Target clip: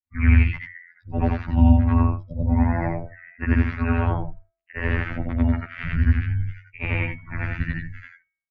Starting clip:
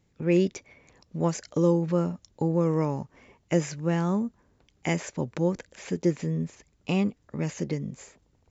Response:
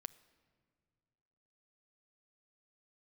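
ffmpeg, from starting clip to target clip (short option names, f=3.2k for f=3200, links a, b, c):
-filter_complex "[0:a]afftfilt=real='re':imag='-im':win_size=8192:overlap=0.75,acrossover=split=210|350|1400[a][b][c][d];[a]aecho=1:1:196:0.0944[e];[d]aeval=exprs='0.0562*sin(PI/2*6.31*val(0)/0.0562)':c=same[f];[e][b][c][f]amix=inputs=4:normalize=0,agate=range=-12dB:threshold=-51dB:ratio=16:detection=peak,afftdn=nr=32:nf=-43,afftfilt=real='hypot(re,im)*cos(PI*b)':imag='0':win_size=2048:overlap=0.75,lowshelf=f=140:g=-5.5,bandreject=f=311.9:t=h:w=4,bandreject=f=623.8:t=h:w=4,bandreject=f=935.7:t=h:w=4,bandreject=f=1.2476k:t=h:w=4,bandreject=f=1.5595k:t=h:w=4,bandreject=f=1.8714k:t=h:w=4,bandreject=f=2.1833k:t=h:w=4,bandreject=f=2.4952k:t=h:w=4,bandreject=f=2.8071k:t=h:w=4,bandreject=f=3.119k:t=h:w=4,bandreject=f=3.4309k:t=h:w=4,highpass=f=190:t=q:w=0.5412,highpass=f=190:t=q:w=1.307,lowpass=f=2.9k:t=q:w=0.5176,lowpass=f=2.9k:t=q:w=0.7071,lowpass=f=2.9k:t=q:w=1.932,afreqshift=-270,lowshelf=f=360:g=11,volume=5dB"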